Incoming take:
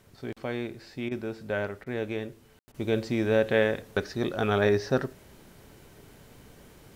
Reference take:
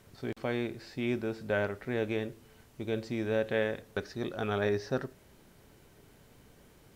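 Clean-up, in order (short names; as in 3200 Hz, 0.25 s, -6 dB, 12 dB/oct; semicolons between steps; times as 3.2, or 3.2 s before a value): room tone fill 2.59–2.68; interpolate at 1.09/1.84/2.72, 22 ms; gain correction -6.5 dB, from 2.63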